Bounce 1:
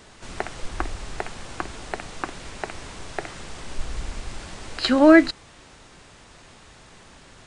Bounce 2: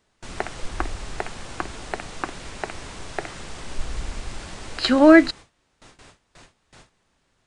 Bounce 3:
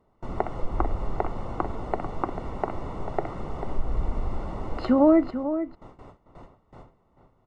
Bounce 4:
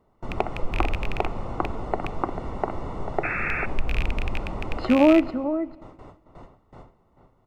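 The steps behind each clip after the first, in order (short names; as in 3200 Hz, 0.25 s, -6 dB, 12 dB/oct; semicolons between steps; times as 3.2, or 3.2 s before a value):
gate with hold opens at -37 dBFS; gain +1 dB
compressor 2.5:1, threshold -24 dBFS, peak gain reduction 11.5 dB; polynomial smoothing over 65 samples; outdoor echo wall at 76 m, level -10 dB; gain +5 dB
rattling part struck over -28 dBFS, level -18 dBFS; painted sound noise, 3.23–3.66, 1200–2700 Hz -30 dBFS; on a send at -21 dB: reverb RT60 1.6 s, pre-delay 20 ms; on the sum: gain +1.5 dB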